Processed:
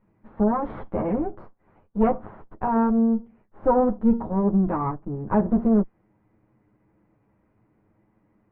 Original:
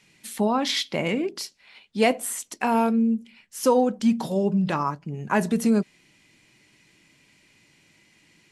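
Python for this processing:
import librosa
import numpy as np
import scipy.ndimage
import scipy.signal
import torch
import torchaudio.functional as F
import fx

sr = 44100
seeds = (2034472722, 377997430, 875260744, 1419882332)

y = fx.lower_of_two(x, sr, delay_ms=9.5)
y = scipy.signal.sosfilt(scipy.signal.butter(4, 1200.0, 'lowpass', fs=sr, output='sos'), y)
y = fx.low_shelf(y, sr, hz=220.0, db=5.5)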